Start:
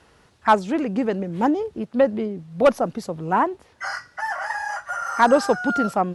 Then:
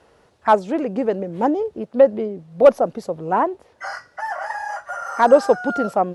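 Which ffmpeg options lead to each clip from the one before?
-af "equalizer=f=550:w=0.97:g=9.5,volume=0.631"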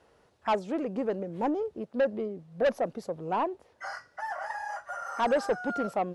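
-af "asoftclip=type=tanh:threshold=0.251,volume=0.398"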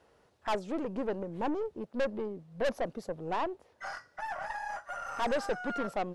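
-af "aeval=exprs='(tanh(20*val(0)+0.5)-tanh(0.5))/20':c=same"

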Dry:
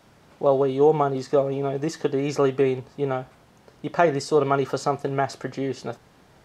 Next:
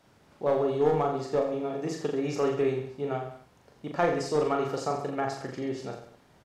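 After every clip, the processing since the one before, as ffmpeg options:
-filter_complex "[0:a]aeval=exprs='clip(val(0),-1,0.188)':c=same,asplit=2[s0][s1];[s1]aecho=0:1:40|84|132.4|185.6|244.2:0.631|0.398|0.251|0.158|0.1[s2];[s0][s2]amix=inputs=2:normalize=0,volume=0.422"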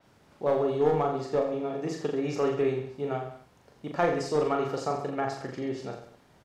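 -af "adynamicequalizer=threshold=0.00224:dfrequency=5600:dqfactor=0.7:tfrequency=5600:tqfactor=0.7:attack=5:release=100:ratio=0.375:range=2:mode=cutabove:tftype=highshelf"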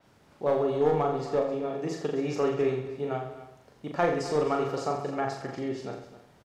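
-af "aecho=1:1:264:0.188"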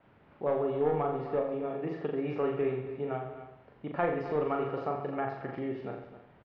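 -filter_complex "[0:a]lowpass=f=2800:w=0.5412,lowpass=f=2800:w=1.3066,asplit=2[s0][s1];[s1]acompressor=threshold=0.0178:ratio=6,volume=0.794[s2];[s0][s2]amix=inputs=2:normalize=0,volume=0.531"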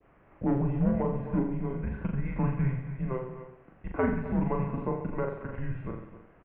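-af "adynamicequalizer=threshold=0.00631:dfrequency=1700:dqfactor=1:tfrequency=1700:tqfactor=1:attack=5:release=100:ratio=0.375:range=2:mode=cutabove:tftype=bell,highpass=f=210:t=q:w=0.5412,highpass=f=210:t=q:w=1.307,lowpass=f=2900:t=q:w=0.5176,lowpass=f=2900:t=q:w=0.7071,lowpass=f=2900:t=q:w=1.932,afreqshift=-260,volume=1.41"

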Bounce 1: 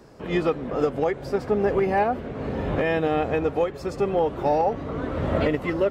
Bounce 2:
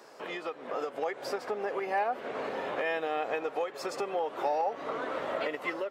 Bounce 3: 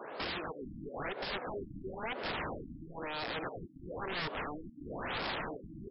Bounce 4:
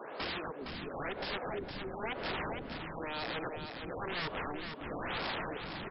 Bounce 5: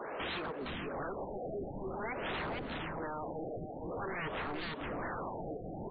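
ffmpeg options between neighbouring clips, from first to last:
-af "acompressor=threshold=0.0251:ratio=6,highpass=600,dynaudnorm=f=520:g=3:m=1.78,volume=1.33"
-af "acompressor=threshold=0.01:ratio=4,aeval=exprs='(mod(89.1*val(0)+1,2)-1)/89.1':c=same,afftfilt=real='re*lt(b*sr/1024,300*pow(5500/300,0.5+0.5*sin(2*PI*1*pts/sr)))':imag='im*lt(b*sr/1024,300*pow(5500/300,0.5+0.5*sin(2*PI*1*pts/sr)))':win_size=1024:overlap=0.75,volume=2.66"
-af "aecho=1:1:462:0.473"
-af "asoftclip=type=tanh:threshold=0.0106,afftfilt=real='re*lt(b*sr/1024,770*pow(4800/770,0.5+0.5*sin(2*PI*0.49*pts/sr)))':imag='im*lt(b*sr/1024,770*pow(4800/770,0.5+0.5*sin(2*PI*0.49*pts/sr)))':win_size=1024:overlap=0.75,volume=1.78"

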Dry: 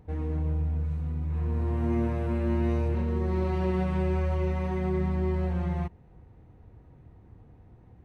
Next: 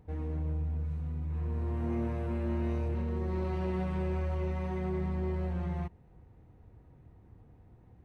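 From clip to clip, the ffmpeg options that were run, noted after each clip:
-af "asoftclip=type=tanh:threshold=0.0944,volume=0.631"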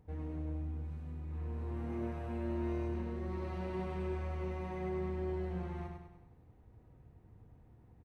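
-af "aecho=1:1:100|200|300|400|500|600:0.596|0.292|0.143|0.0701|0.0343|0.0168,volume=0.562"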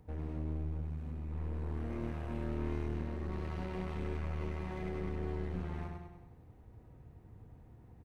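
-filter_complex "[0:a]acrossover=split=340|930[s0][s1][s2];[s1]acompressor=threshold=0.002:ratio=6[s3];[s0][s3][s2]amix=inputs=3:normalize=0,aeval=exprs='clip(val(0),-1,0.00422)':c=same,volume=1.58"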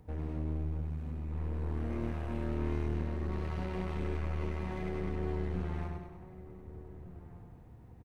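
-filter_complex "[0:a]asplit=2[s0][s1];[s1]adelay=1516,volume=0.2,highshelf=f=4000:g=-34.1[s2];[s0][s2]amix=inputs=2:normalize=0,volume=1.33"

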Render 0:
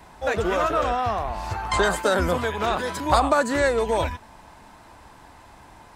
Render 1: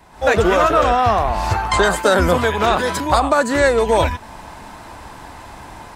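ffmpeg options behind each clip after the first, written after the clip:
-af "dynaudnorm=f=110:g=3:m=4.22,volume=0.891"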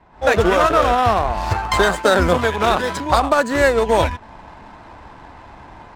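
-af "adynamicsmooth=sensitivity=6:basefreq=2500,aeval=exprs='0.794*(cos(1*acos(clip(val(0)/0.794,-1,1)))-cos(1*PI/2))+0.0355*(cos(7*acos(clip(val(0)/0.794,-1,1)))-cos(7*PI/2))':c=same"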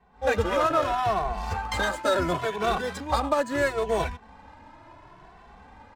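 -filter_complex "[0:a]asplit=2[s0][s1];[s1]adelay=2.2,afreqshift=0.73[s2];[s0][s2]amix=inputs=2:normalize=1,volume=0.473"

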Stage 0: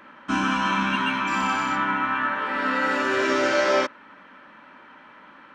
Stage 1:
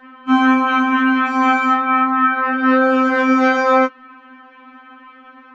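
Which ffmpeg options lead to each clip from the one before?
-af "aemphasis=mode=reproduction:type=75fm,afftfilt=real='re*3.46*eq(mod(b,12),0)':imag='im*3.46*eq(mod(b,12),0)':win_size=2048:overlap=0.75,volume=2.24"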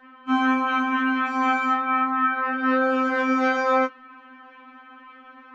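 -af "equalizer=f=150:w=0.76:g=-3.5,areverse,acompressor=mode=upward:threshold=0.02:ratio=2.5,areverse,volume=0.473"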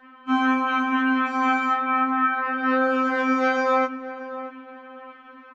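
-filter_complex "[0:a]asplit=2[s0][s1];[s1]adelay=628,lowpass=f=1200:p=1,volume=0.282,asplit=2[s2][s3];[s3]adelay=628,lowpass=f=1200:p=1,volume=0.36,asplit=2[s4][s5];[s5]adelay=628,lowpass=f=1200:p=1,volume=0.36,asplit=2[s6][s7];[s7]adelay=628,lowpass=f=1200:p=1,volume=0.36[s8];[s0][s2][s4][s6][s8]amix=inputs=5:normalize=0"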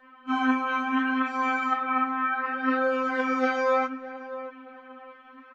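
-af "flanger=delay=1.7:depth=7.9:regen=42:speed=0.68:shape=sinusoidal"

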